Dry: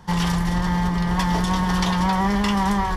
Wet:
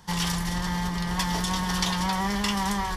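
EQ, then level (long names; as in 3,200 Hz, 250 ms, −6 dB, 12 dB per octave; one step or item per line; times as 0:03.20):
high-shelf EQ 2,500 Hz +12 dB
−7.5 dB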